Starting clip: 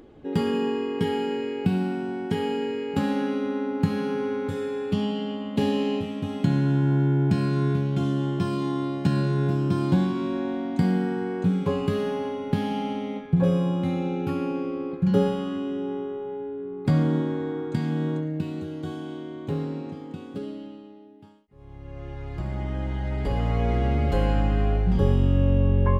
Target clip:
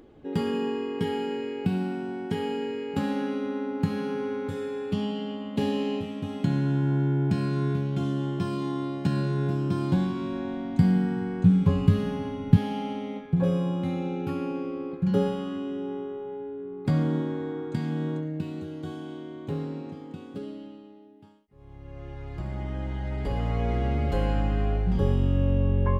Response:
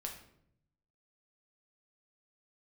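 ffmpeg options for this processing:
-filter_complex "[0:a]asettb=1/sr,asplit=3[s0][s1][s2];[s0]atrim=end=9.754[s3];[s1]atrim=start=9.75:end=12.57,asetpts=PTS-STARTPTS,afade=t=in:d=0.004:c=qsin,afade=t=out:st=2.816:d=0.004:c=qsin,asubboost=boost=10.5:cutoff=160[s4];[s2]atrim=start=12.566[s5];[s3][s4]acrossfade=d=0.004:c1=hsin:c2=qsin[s6];[s6][s5]acrossfade=d=0.004:c1=qsin:c2=hsin,volume=0.708"

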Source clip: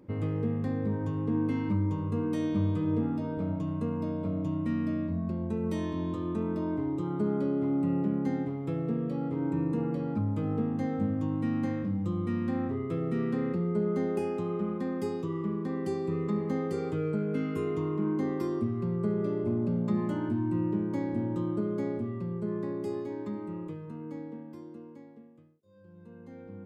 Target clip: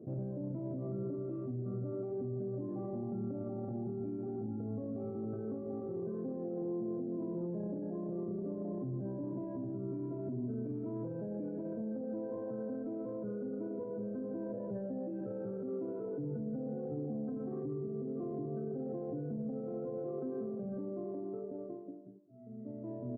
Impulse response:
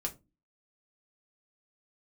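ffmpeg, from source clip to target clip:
-filter_complex "[0:a]asplit=2[s0][s1];[s1]equalizer=f=100:t=o:w=0.33:g=-10,equalizer=f=500:t=o:w=0.33:g=-6,equalizer=f=2500:t=o:w=0.33:g=5,equalizer=f=4000:t=o:w=0.33:g=-10[s2];[1:a]atrim=start_sample=2205,adelay=139[s3];[s2][s3]afir=irnorm=-1:irlink=0,volume=0.158[s4];[s0][s4]amix=inputs=2:normalize=0,acompressor=threshold=0.0126:ratio=10,flanger=delay=4.4:depth=4.5:regen=-89:speed=0.81:shape=triangular,alimiter=level_in=8.41:limit=0.0631:level=0:latency=1:release=15,volume=0.119,asetrate=48091,aresample=44100,atempo=0.917004,highpass=f=75:w=0.5412,highpass=f=75:w=1.3066,adynamicsmooth=sensitivity=3.5:basefreq=580,aecho=1:1:225|450|675|900:0.2|0.0818|0.0335|0.0138,asetrate=50715,aresample=44100,afftdn=nr=12:nf=-63,highshelf=f=2700:g=-11,volume=3.55"

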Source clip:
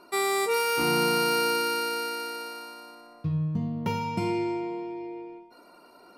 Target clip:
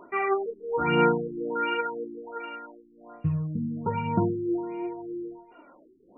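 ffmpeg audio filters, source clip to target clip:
-filter_complex "[0:a]aphaser=in_gain=1:out_gain=1:delay=3.7:decay=0.49:speed=0.96:type=sinusoidal,asettb=1/sr,asplit=3[s0][s1][s2];[s0]atrim=end=3.474[s3];[s1]atrim=start=3.47:end=3.97,asetpts=PTS-STARTPTS,afade=t=in:d=0.004:c=qsin,afade=t=out:st=0.496:d=0.004:c=qsin,equalizer=f=680:t=o:w=0.21:g=-10[s4];[s2]atrim=start=3.966[s5];[s3][s4]acrossfade=d=0.004:c1=hsin:c2=qsin[s6];[s6][s5]acrossfade=d=0.004:c1=qsin:c2=hsin,afftfilt=real='re*lt(b*sr/1024,410*pow(3100/410,0.5+0.5*sin(2*PI*1.3*pts/sr)))':imag='im*lt(b*sr/1024,410*pow(3100/410,0.5+0.5*sin(2*PI*1.3*pts/sr)))':win_size=1024:overlap=0.75"

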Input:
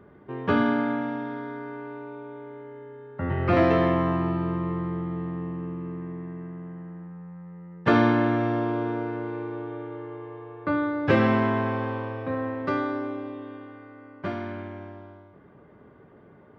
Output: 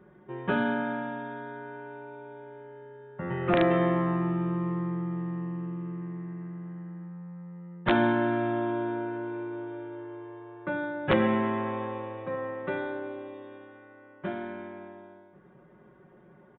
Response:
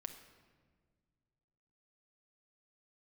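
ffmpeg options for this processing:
-af "aecho=1:1:5.5:0.89,aresample=11025,aeval=exprs='(mod(2.24*val(0)+1,2)-1)/2.24':c=same,aresample=44100,aresample=8000,aresample=44100,volume=0.501"

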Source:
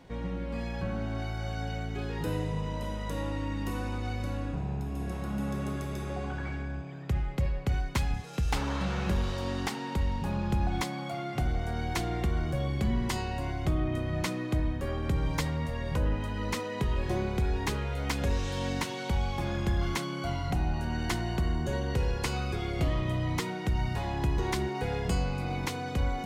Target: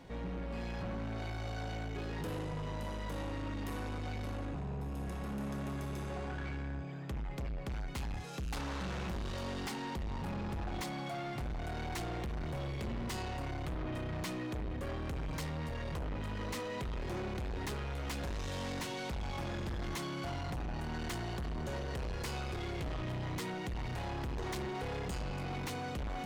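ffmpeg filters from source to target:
-af "asoftclip=type=tanh:threshold=0.0158"

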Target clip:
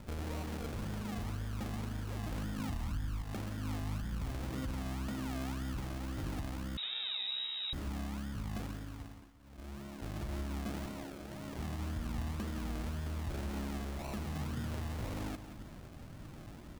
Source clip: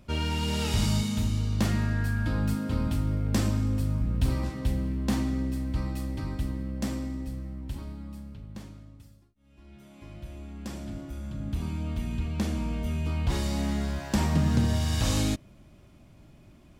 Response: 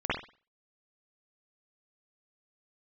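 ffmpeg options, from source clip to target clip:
-filter_complex "[0:a]asettb=1/sr,asplit=3[s0][s1][s2];[s0]atrim=end=2.594[s3];[s1]atrim=start=2.59:end=3.22,asetpts=PTS-STARTPTS,afade=t=in:d=0.004:c=qsin,afade=t=out:st=0.626:d=0.004:c=qsin,aemphasis=mode=reproduction:type=riaa[s4];[s2]atrim=start=3.216[s5];[s3][s4]acrossfade=d=0.004:c1=hsin:c2=qsin[s6];[s6][s5]acrossfade=d=0.004:c1=qsin:c2=hsin,asettb=1/sr,asplit=3[s7][s8][s9];[s7]atrim=end=10.864[s10];[s8]atrim=start=10.86:end=11.59,asetpts=PTS-STARTPTS,afade=t=in:d=0.004:c=qsin,afade=t=out:st=0.726:d=0.004:c=qsin,highpass=f=860:p=1[s11];[s9]atrim=start=11.586[s12];[s10][s11]acrossfade=d=0.004:c1=hsin:c2=qsin[s13];[s13][s12]acrossfade=d=0.004:c1=qsin:c2=hsin,acompressor=threshold=0.0178:ratio=6,alimiter=level_in=3.98:limit=0.0631:level=0:latency=1:release=19,volume=0.251,acrusher=samples=37:mix=1:aa=0.000001:lfo=1:lforange=22.2:lforate=1.9,aecho=1:1:177|354|531|708|885:0.282|0.124|0.0546|0.024|0.0106,asettb=1/sr,asplit=3[s14][s15][s16];[s14]atrim=end=6.774[s17];[s15]atrim=start=6.77:end=7.73,asetpts=PTS-STARTPTS,afade=t=in:d=0.004:c=qsin,afade=t=out:st=0.956:d=0.004:c=qsin,lowpass=f=3300:t=q:w=0.5098,lowpass=f=3300:t=q:w=0.6013,lowpass=f=3300:t=q:w=0.9,lowpass=f=3300:t=q:w=2.563,afreqshift=-3900[s18];[s16]atrim=start=7.726[s19];[s17][s18]acrossfade=d=0.004:c1=hsin:c2=qsin[s20];[s20][s19]acrossfade=d=0.004:c1=qsin:c2=hsin,volume=1.58"

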